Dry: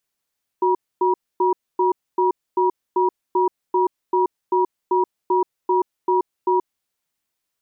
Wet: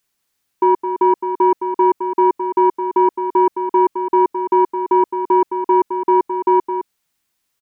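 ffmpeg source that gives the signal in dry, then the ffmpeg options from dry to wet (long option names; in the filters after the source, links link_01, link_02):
-f lavfi -i "aevalsrc='0.133*(sin(2*PI*368*t)+sin(2*PI*959*t))*clip(min(mod(t,0.39),0.13-mod(t,0.39))/0.005,0,1)':duration=6.17:sample_rate=44100"
-filter_complex "[0:a]equalizer=frequency=570:width_type=o:width=0.79:gain=-4,acontrast=86,asplit=2[link_01][link_02];[link_02]aecho=0:1:214:0.376[link_03];[link_01][link_03]amix=inputs=2:normalize=0"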